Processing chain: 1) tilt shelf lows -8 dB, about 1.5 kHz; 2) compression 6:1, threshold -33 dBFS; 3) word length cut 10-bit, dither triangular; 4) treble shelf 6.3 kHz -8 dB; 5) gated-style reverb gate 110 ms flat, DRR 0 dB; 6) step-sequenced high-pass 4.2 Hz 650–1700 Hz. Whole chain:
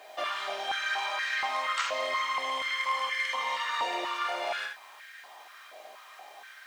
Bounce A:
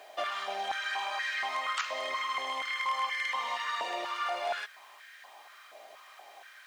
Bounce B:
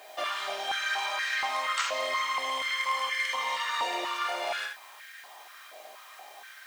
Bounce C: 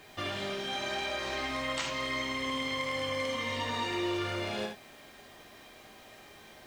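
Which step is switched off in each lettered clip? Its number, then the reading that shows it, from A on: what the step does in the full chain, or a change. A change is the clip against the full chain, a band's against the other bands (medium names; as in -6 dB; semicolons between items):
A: 5, momentary loudness spread change +1 LU; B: 4, 8 kHz band +4.0 dB; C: 6, 250 Hz band +16.0 dB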